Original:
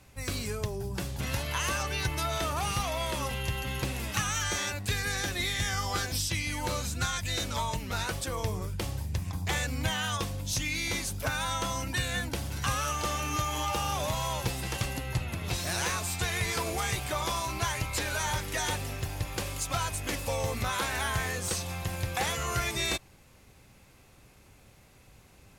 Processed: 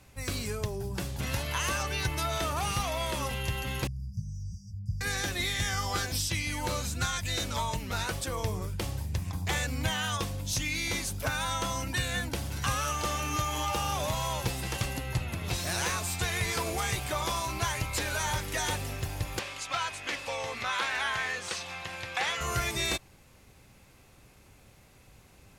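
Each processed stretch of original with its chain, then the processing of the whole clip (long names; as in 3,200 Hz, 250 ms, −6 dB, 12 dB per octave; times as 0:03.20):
0:03.87–0:05.01: linear-phase brick-wall band-stop 200–4,700 Hz + high-frequency loss of the air 390 metres
0:19.39–0:22.41: low-pass filter 2,600 Hz + spectral tilt +4.5 dB per octave
whole clip: no processing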